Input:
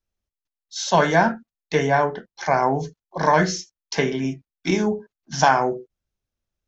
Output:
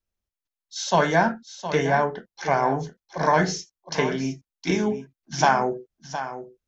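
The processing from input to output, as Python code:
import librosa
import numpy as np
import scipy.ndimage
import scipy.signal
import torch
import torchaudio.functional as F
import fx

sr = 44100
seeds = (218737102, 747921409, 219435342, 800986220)

y = x + 10.0 ** (-11.5 / 20.0) * np.pad(x, (int(714 * sr / 1000.0), 0))[:len(x)]
y = F.gain(torch.from_numpy(y), -2.5).numpy()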